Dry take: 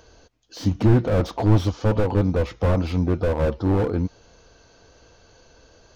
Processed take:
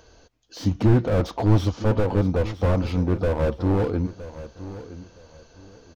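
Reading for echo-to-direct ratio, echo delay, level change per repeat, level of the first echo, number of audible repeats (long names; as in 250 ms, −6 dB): −14.5 dB, 966 ms, −12.0 dB, −15.0 dB, 2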